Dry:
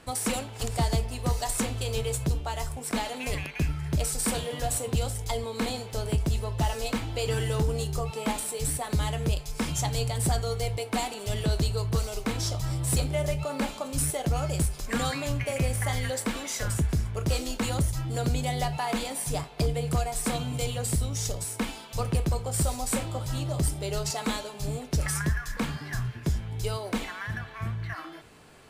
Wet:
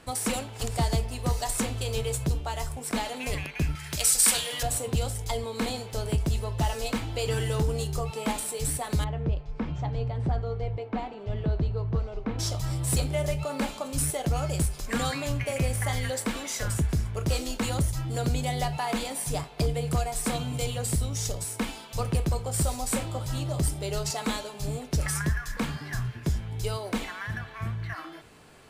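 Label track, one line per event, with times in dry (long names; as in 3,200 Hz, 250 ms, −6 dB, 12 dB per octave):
3.750000	4.630000	tilt shelving filter lows −10 dB, about 940 Hz
9.040000	12.390000	head-to-tape spacing loss at 10 kHz 43 dB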